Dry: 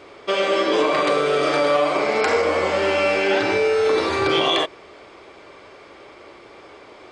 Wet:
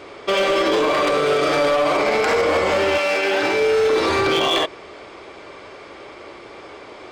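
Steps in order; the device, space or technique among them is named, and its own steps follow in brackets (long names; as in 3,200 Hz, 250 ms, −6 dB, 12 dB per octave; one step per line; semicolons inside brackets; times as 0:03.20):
limiter into clipper (brickwall limiter −13.5 dBFS, peak gain reduction 6.5 dB; hard clipping −18.5 dBFS, distortion −16 dB)
0:02.97–0:03.59: high-pass filter 630 Hz → 200 Hz 6 dB per octave
level +5 dB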